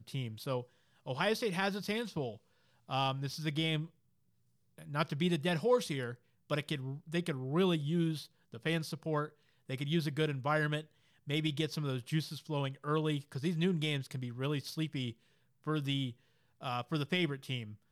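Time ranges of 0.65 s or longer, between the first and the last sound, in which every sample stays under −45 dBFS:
0:03.86–0:04.78

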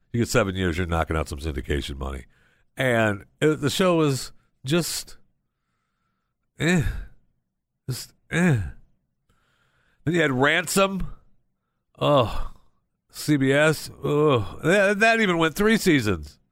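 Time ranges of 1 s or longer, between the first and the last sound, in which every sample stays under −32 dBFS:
0:05.12–0:06.60
0:08.71–0:10.07

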